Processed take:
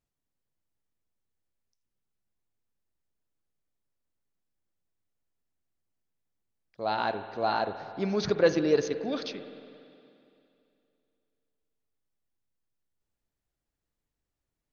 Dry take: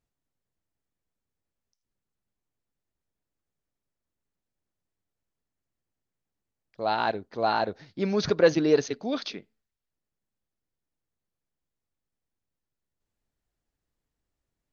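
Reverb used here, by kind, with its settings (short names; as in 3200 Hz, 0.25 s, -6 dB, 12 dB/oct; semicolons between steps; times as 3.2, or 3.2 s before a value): spring tank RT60 2.7 s, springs 47/56 ms, chirp 45 ms, DRR 10 dB; gain -3 dB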